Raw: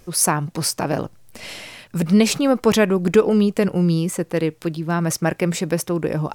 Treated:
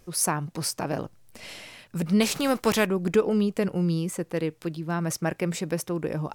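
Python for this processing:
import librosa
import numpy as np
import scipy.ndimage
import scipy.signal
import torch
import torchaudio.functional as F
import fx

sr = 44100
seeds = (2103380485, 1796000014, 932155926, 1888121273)

y = fx.spec_flatten(x, sr, power=0.7, at=(2.2, 2.85), fade=0.02)
y = y * 10.0 ** (-7.0 / 20.0)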